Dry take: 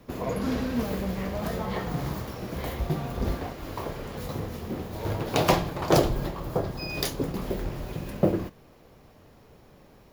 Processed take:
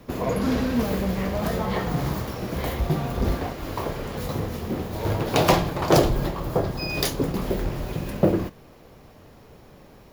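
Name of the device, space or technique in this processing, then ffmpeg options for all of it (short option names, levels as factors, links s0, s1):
parallel distortion: -filter_complex "[0:a]asplit=2[s0][s1];[s1]asoftclip=type=hard:threshold=0.0668,volume=0.501[s2];[s0][s2]amix=inputs=2:normalize=0,volume=1.19"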